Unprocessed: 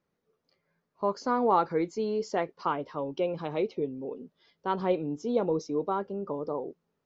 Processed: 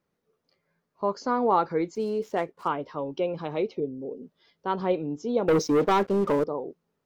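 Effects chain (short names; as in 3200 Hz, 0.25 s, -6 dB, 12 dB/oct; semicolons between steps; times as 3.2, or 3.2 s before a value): 1.95–2.68 median filter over 9 samples; 3.8–4.23 band shelf 1800 Hz -16 dB 2.3 oct; 5.48–6.44 sample leveller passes 3; gain +1.5 dB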